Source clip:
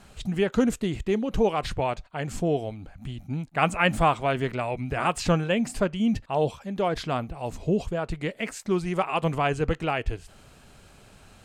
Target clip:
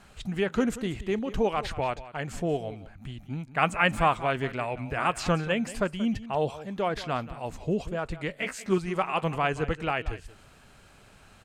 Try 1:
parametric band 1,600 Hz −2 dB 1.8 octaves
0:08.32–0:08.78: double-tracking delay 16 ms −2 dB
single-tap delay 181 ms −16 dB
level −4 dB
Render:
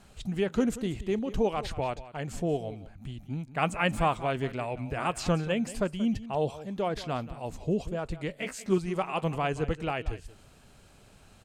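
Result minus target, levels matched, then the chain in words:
2,000 Hz band −3.5 dB
parametric band 1,600 Hz +4.5 dB 1.8 octaves
0:08.32–0:08.78: double-tracking delay 16 ms −2 dB
single-tap delay 181 ms −16 dB
level −4 dB

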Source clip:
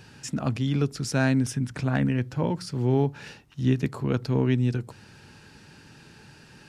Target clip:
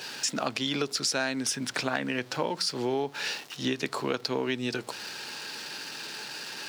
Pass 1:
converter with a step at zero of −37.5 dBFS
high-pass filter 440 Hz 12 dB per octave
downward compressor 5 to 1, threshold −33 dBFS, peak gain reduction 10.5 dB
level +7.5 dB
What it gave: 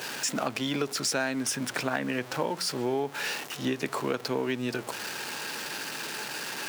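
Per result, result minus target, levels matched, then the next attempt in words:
converter with a step at zero: distortion +11 dB; 4,000 Hz band −2.5 dB
converter with a step at zero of −48.5 dBFS
high-pass filter 440 Hz 12 dB per octave
downward compressor 5 to 1, threshold −33 dBFS, peak gain reduction 10.5 dB
level +7.5 dB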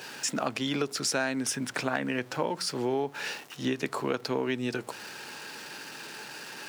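4,000 Hz band −3.5 dB
converter with a step at zero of −48.5 dBFS
high-pass filter 440 Hz 12 dB per octave
parametric band 4,300 Hz +7.5 dB 1.2 octaves
downward compressor 5 to 1, threshold −33 dBFS, peak gain reduction 11 dB
level +7.5 dB

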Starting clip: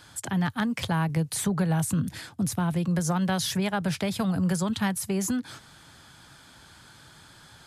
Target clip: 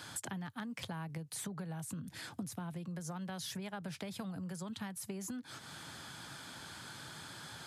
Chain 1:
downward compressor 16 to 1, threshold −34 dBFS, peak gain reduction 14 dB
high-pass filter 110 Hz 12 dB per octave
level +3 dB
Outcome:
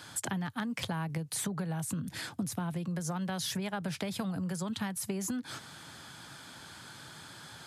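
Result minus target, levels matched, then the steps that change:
downward compressor: peak gain reduction −7.5 dB
change: downward compressor 16 to 1, threshold −42 dBFS, peak gain reduction 21.5 dB

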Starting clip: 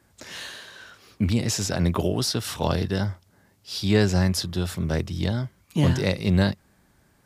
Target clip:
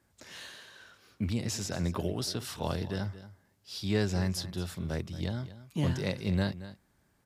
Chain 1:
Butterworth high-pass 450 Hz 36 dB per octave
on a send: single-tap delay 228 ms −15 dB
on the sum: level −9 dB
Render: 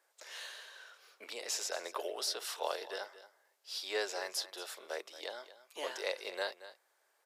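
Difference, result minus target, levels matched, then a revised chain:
500 Hz band +3.0 dB
on a send: single-tap delay 228 ms −15 dB
on the sum: level −9 dB

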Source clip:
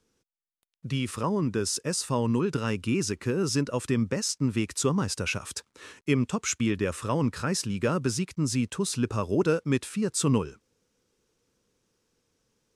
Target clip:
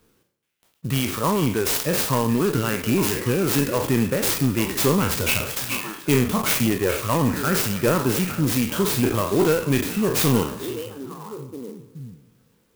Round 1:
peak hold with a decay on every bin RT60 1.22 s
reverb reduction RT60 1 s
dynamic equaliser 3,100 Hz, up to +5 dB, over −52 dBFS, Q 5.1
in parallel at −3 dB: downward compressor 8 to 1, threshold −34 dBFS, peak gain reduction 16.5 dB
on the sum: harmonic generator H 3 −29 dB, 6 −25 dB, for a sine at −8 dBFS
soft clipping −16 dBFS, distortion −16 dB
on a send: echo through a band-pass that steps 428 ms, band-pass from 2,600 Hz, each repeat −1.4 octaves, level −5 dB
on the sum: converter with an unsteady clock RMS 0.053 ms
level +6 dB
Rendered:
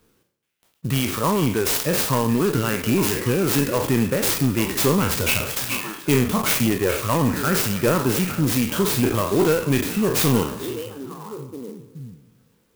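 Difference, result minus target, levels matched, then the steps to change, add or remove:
downward compressor: peak gain reduction −10 dB
change: downward compressor 8 to 1, threshold −45.5 dBFS, peak gain reduction 26.5 dB

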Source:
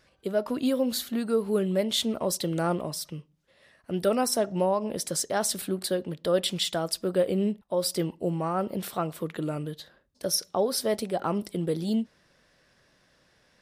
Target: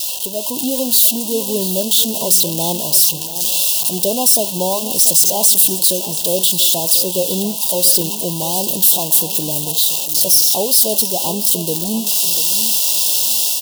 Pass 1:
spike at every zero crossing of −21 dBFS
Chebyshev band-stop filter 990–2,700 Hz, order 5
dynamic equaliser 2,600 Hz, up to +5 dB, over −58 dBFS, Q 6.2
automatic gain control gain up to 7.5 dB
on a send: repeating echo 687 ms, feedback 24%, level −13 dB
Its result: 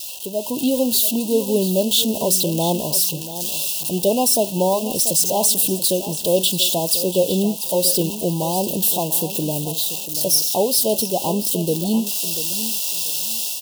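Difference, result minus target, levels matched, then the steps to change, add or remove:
spike at every zero crossing: distortion −9 dB; 2,000 Hz band +2.5 dB
change: spike at every zero crossing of −11 dBFS
change: dynamic equaliser 1,100 Hz, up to +5 dB, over −58 dBFS, Q 6.2

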